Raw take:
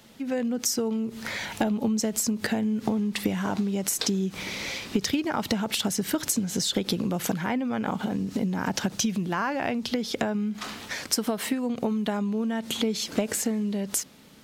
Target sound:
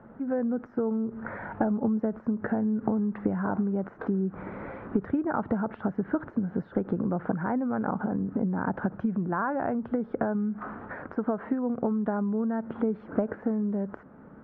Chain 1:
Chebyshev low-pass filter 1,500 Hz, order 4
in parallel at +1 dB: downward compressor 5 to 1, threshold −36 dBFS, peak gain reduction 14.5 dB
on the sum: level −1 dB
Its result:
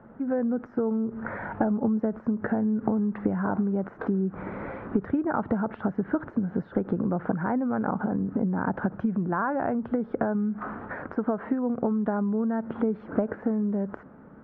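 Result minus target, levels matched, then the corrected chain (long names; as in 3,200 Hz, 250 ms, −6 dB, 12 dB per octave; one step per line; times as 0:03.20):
downward compressor: peak gain reduction −9 dB
Chebyshev low-pass filter 1,500 Hz, order 4
in parallel at +1 dB: downward compressor 5 to 1, threshold −47 dBFS, peak gain reduction 23.5 dB
on the sum: level −1 dB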